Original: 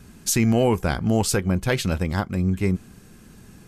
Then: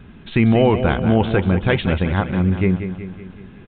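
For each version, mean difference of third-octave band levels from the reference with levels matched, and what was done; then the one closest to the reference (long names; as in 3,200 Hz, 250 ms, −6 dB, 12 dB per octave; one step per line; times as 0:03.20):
7.0 dB: on a send: repeating echo 187 ms, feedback 54%, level −9.5 dB
on the sum: downsampling to 8,000 Hz
level +4.5 dB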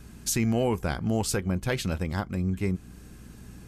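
1.5 dB: in parallel at −0.5 dB: downward compressor, threshold −31 dBFS, peak gain reduction 15.5 dB
on the sum: mains hum 60 Hz, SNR 20 dB
level −7.5 dB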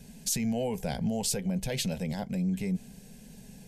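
5.0 dB: brickwall limiter −18.5 dBFS, peak gain reduction 10 dB
phaser with its sweep stopped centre 330 Hz, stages 6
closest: second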